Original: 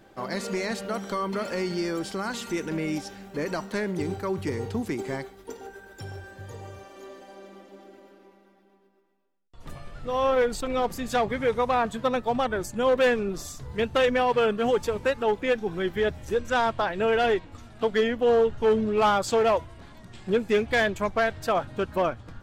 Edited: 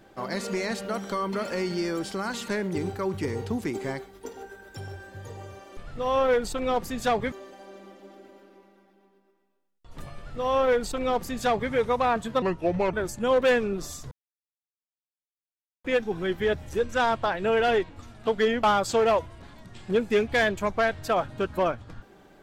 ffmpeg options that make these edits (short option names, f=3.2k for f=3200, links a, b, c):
-filter_complex "[0:a]asplit=9[a][b][c][d][e][f][g][h][i];[a]atrim=end=2.482[j];[b]atrim=start=3.718:end=7.012[k];[c]atrim=start=9.848:end=11.402[l];[d]atrim=start=7.008:end=12.114[m];[e]atrim=start=12.11:end=12.49,asetpts=PTS-STARTPTS,asetrate=32634,aresample=44100[n];[f]atrim=start=12.486:end=13.67,asetpts=PTS-STARTPTS,afade=t=out:st=1.18:d=0.004:c=hsin[o];[g]atrim=start=13.67:end=15.4,asetpts=PTS-STARTPTS,volume=0[p];[h]atrim=start=15.4:end=18.192,asetpts=PTS-STARTPTS,afade=t=in:d=0.004:c=hsin[q];[i]atrim=start=19.018[r];[j][k]acrossfade=d=0.004:c1=hsin:c2=hsin[s];[s][l]acrossfade=d=0.004:c1=hsin:c2=hsin[t];[t][m]acrossfade=d=0.004:c1=hsin:c2=hsin[u];[u][n]acrossfade=d=0.004:c1=hsin:c2=hsin[v];[o][p][q]concat=n=3:v=0:a=1[w];[v][w]acrossfade=d=0.004:c1=hsin:c2=hsin[x];[x][r]acrossfade=d=0.004:c1=hsin:c2=hsin"